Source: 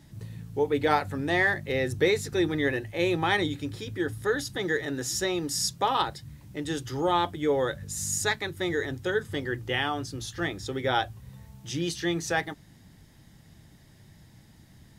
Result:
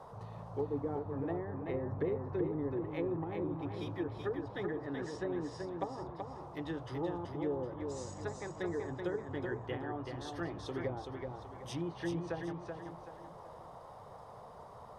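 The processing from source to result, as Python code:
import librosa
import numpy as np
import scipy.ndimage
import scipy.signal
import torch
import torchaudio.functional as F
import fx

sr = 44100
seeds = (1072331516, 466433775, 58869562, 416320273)

p1 = np.repeat(scipy.signal.resample_poly(x, 1, 3), 3)[:len(x)]
p2 = fx.env_lowpass_down(p1, sr, base_hz=400.0, full_db=-22.5)
p3 = p2 + fx.echo_feedback(p2, sr, ms=380, feedback_pct=36, wet_db=-5.0, dry=0)
p4 = fx.dmg_noise_band(p3, sr, seeds[0], low_hz=430.0, high_hz=1100.0, level_db=-44.0)
y = p4 * librosa.db_to_amplitude(-8.0)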